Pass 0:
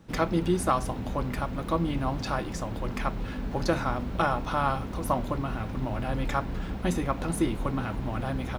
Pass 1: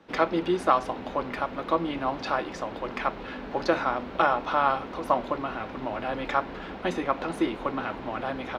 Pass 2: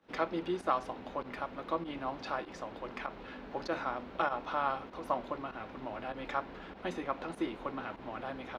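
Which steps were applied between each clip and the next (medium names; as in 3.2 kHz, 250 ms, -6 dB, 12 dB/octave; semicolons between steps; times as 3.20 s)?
three-band isolator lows -19 dB, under 280 Hz, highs -20 dB, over 4.7 kHz; trim +4 dB
volume shaper 98 bpm, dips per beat 1, -12 dB, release 71 ms; trim -9 dB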